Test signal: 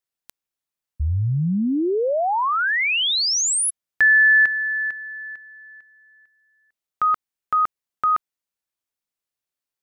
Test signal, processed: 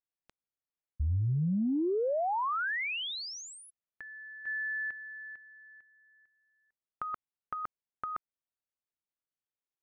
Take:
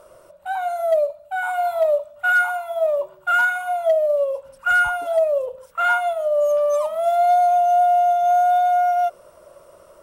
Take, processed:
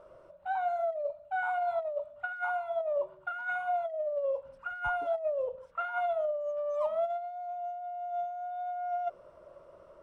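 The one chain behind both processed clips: negative-ratio compressor -21 dBFS, ratio -0.5; tape spacing loss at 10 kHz 25 dB; gain -8.5 dB

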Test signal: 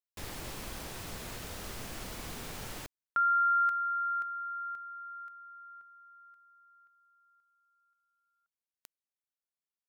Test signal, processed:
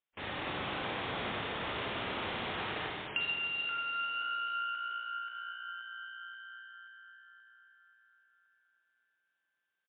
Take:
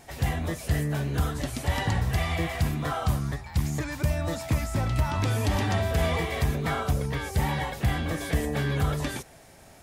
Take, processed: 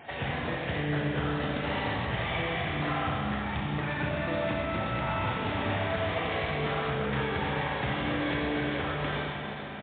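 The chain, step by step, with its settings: self-modulated delay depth 0.24 ms; HPF 87 Hz 12 dB/oct; low shelf 330 Hz -8 dB; compressor 12:1, threshold -37 dBFS; hard clip -25.5 dBFS; frequency-shifting echo 0.438 s, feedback 58%, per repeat +59 Hz, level -14 dB; Schroeder reverb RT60 2.8 s, combs from 30 ms, DRR -2.5 dB; gain +6.5 dB; MP3 24 kbps 8000 Hz

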